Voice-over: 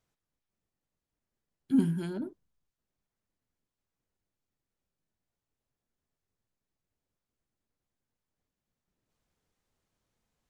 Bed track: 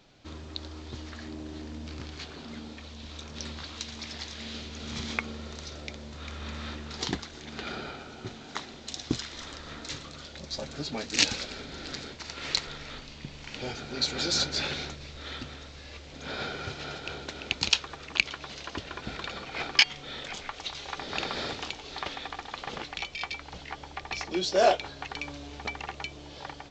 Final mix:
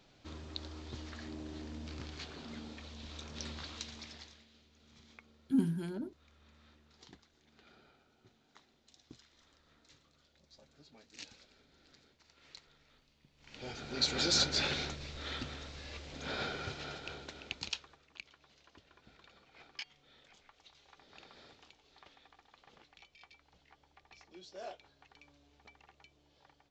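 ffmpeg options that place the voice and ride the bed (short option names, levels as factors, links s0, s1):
-filter_complex "[0:a]adelay=3800,volume=0.596[s0];[1:a]volume=8.91,afade=t=out:st=3.69:d=0.77:silence=0.0891251,afade=t=in:st=13.36:d=0.76:silence=0.0630957,afade=t=out:st=16.11:d=1.93:silence=0.0749894[s1];[s0][s1]amix=inputs=2:normalize=0"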